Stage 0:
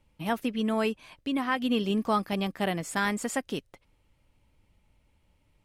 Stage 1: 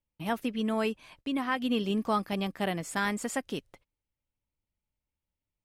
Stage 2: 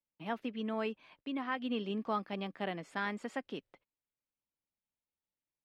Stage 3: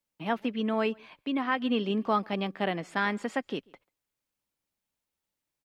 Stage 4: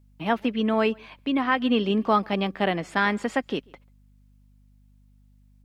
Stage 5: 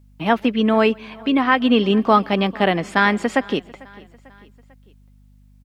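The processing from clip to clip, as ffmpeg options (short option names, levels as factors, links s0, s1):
-af "agate=range=0.0891:threshold=0.00158:ratio=16:detection=peak,volume=0.794"
-filter_complex "[0:a]acrossover=split=160 4400:gain=0.178 1 0.0794[s0][s1][s2];[s0][s1][s2]amix=inputs=3:normalize=0,volume=0.501"
-filter_complex "[0:a]asplit=2[s0][s1];[s1]adelay=139.9,volume=0.0398,highshelf=f=4000:g=-3.15[s2];[s0][s2]amix=inputs=2:normalize=0,volume=2.51"
-af "aeval=exprs='val(0)+0.000891*(sin(2*PI*50*n/s)+sin(2*PI*2*50*n/s)/2+sin(2*PI*3*50*n/s)/3+sin(2*PI*4*50*n/s)/4+sin(2*PI*5*50*n/s)/5)':c=same,volume=1.88"
-af "aecho=1:1:446|892|1338:0.0668|0.0354|0.0188,volume=2.11"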